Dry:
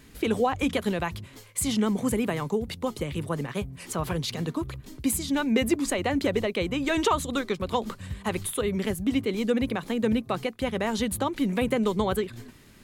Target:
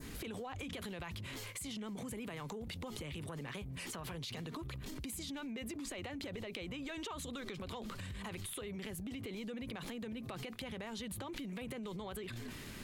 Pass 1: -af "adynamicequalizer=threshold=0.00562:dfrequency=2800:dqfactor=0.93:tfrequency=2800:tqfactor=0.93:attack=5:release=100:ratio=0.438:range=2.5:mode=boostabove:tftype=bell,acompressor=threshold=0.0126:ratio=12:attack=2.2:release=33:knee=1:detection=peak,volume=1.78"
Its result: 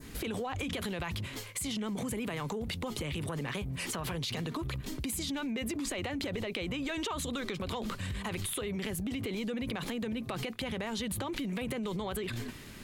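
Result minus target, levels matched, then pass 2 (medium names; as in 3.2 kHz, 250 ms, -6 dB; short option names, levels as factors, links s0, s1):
compression: peak gain reduction -8.5 dB
-af "adynamicequalizer=threshold=0.00562:dfrequency=2800:dqfactor=0.93:tfrequency=2800:tqfactor=0.93:attack=5:release=100:ratio=0.438:range=2.5:mode=boostabove:tftype=bell,acompressor=threshold=0.00447:ratio=12:attack=2.2:release=33:knee=1:detection=peak,volume=1.78"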